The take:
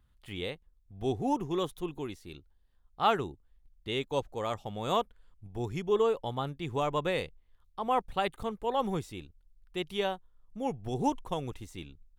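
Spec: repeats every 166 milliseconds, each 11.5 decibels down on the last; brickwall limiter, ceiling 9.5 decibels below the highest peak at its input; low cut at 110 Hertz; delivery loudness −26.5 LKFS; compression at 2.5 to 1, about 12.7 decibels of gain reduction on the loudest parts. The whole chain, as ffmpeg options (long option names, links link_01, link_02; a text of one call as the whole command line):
ffmpeg -i in.wav -af "highpass=110,acompressor=threshold=-42dB:ratio=2.5,alimiter=level_in=11dB:limit=-24dB:level=0:latency=1,volume=-11dB,aecho=1:1:166|332|498:0.266|0.0718|0.0194,volume=20dB" out.wav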